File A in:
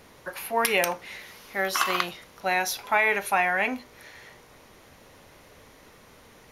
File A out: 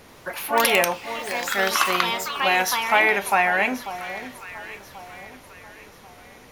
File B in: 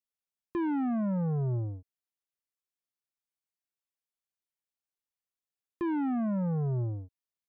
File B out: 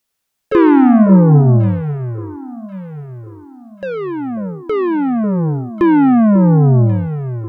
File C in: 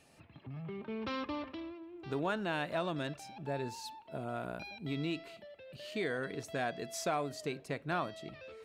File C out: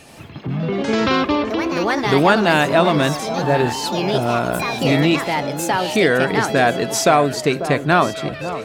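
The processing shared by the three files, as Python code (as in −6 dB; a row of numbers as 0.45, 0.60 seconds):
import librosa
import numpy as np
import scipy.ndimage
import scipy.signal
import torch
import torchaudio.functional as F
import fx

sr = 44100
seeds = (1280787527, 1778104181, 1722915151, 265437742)

y = fx.echo_pitch(x, sr, ms=84, semitones=4, count=2, db_per_echo=-6.0)
y = fx.echo_alternate(y, sr, ms=543, hz=1200.0, feedback_pct=60, wet_db=-11.5)
y = librosa.util.normalize(y) * 10.0 ** (-1.5 / 20.0)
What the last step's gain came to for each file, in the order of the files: +4.0, +19.5, +20.0 decibels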